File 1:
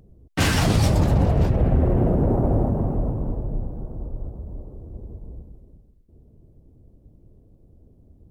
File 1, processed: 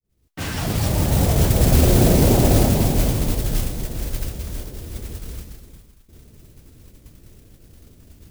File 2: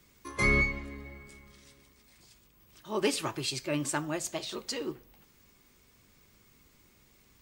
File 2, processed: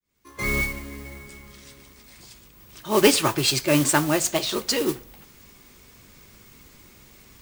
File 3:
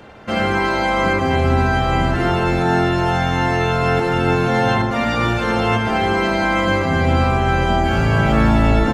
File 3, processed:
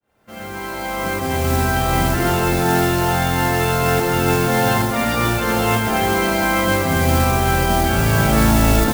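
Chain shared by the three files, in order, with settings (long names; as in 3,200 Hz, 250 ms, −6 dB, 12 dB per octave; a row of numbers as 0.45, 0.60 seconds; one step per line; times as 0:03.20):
fade in at the beginning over 1.98 s
noise that follows the level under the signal 12 dB
normalise the peak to −3 dBFS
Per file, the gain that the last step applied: +4.5, +11.5, −0.5 decibels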